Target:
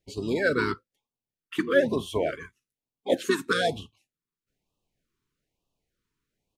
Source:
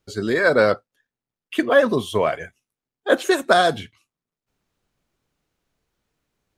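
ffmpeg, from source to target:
-filter_complex "[0:a]asplit=3[s0][s1][s2];[s1]asetrate=22050,aresample=44100,atempo=2,volume=0.178[s3];[s2]asetrate=29433,aresample=44100,atempo=1.49831,volume=0.282[s4];[s0][s3][s4]amix=inputs=3:normalize=0,afftfilt=real='re*(1-between(b*sr/1024,610*pow(1800/610,0.5+0.5*sin(2*PI*1.1*pts/sr))/1.41,610*pow(1800/610,0.5+0.5*sin(2*PI*1.1*pts/sr))*1.41))':imag='im*(1-between(b*sr/1024,610*pow(1800/610,0.5+0.5*sin(2*PI*1.1*pts/sr))/1.41,610*pow(1800/610,0.5+0.5*sin(2*PI*1.1*pts/sr))*1.41))':win_size=1024:overlap=0.75,volume=0.473"

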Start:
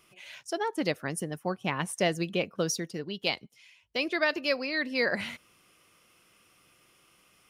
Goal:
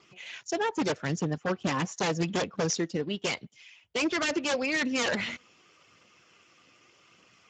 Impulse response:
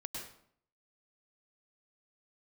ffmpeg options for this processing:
-af "aphaser=in_gain=1:out_gain=1:delay=4.2:decay=0.28:speed=0.83:type=triangular,aeval=exprs='0.0501*(abs(mod(val(0)/0.0501+3,4)-2)-1)':c=same,volume=1.68" -ar 16000 -c:a libspeex -b:a 13k

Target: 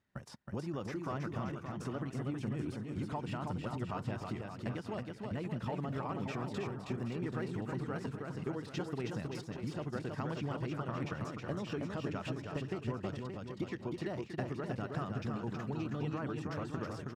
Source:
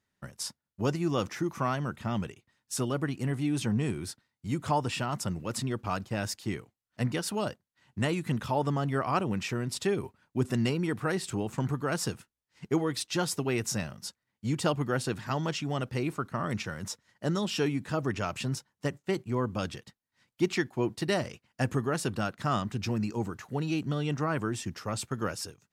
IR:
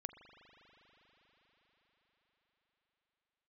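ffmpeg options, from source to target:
-filter_complex "[0:a]deesser=0.95,lowpass=f=2300:p=1,acompressor=threshold=0.0126:ratio=6,atempo=1.5,asplit=2[s0][s1];[s1]aecho=0:1:320|576|780.8|944.6|1076:0.631|0.398|0.251|0.158|0.1[s2];[s0][s2]amix=inputs=2:normalize=0,volume=1.19"

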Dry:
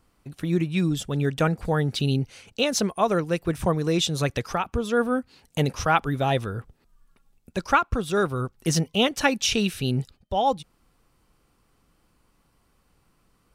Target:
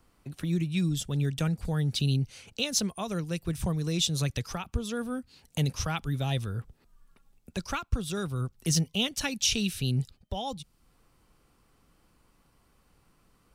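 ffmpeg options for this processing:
-filter_complex "[0:a]acrossover=split=190|3000[s0][s1][s2];[s1]acompressor=threshold=0.00501:ratio=2[s3];[s0][s3][s2]amix=inputs=3:normalize=0"

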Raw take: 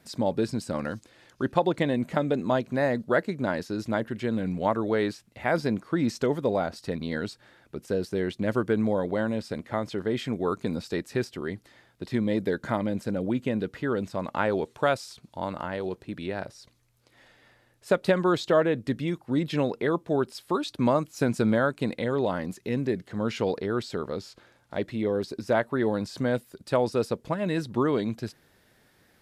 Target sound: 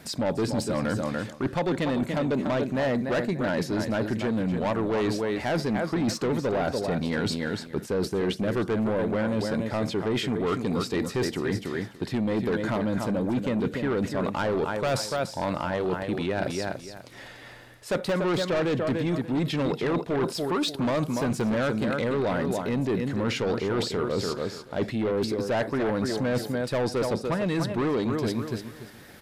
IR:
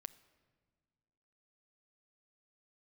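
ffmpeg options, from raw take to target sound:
-filter_complex "[0:a]deesser=0.85,aecho=1:1:291|582|873:0.335|0.067|0.0134,asplit=2[s0][s1];[1:a]atrim=start_sample=2205,atrim=end_sample=3969[s2];[s1][s2]afir=irnorm=-1:irlink=0,volume=4.22[s3];[s0][s3]amix=inputs=2:normalize=0,asoftclip=type=tanh:threshold=0.188,areverse,acompressor=threshold=0.0447:ratio=6,areverse,volume=1.33"

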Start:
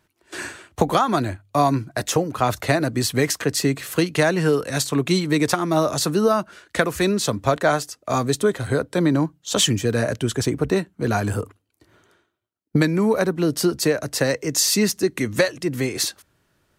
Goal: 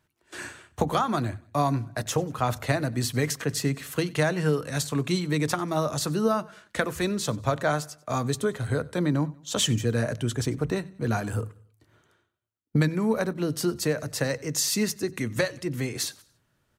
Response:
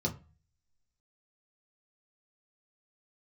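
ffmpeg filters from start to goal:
-filter_complex "[0:a]aecho=1:1:94|188|282:0.0708|0.0283|0.0113,asplit=2[s0][s1];[1:a]atrim=start_sample=2205,lowshelf=f=160:g=6.5[s2];[s1][s2]afir=irnorm=-1:irlink=0,volume=0.075[s3];[s0][s3]amix=inputs=2:normalize=0,volume=0.501"

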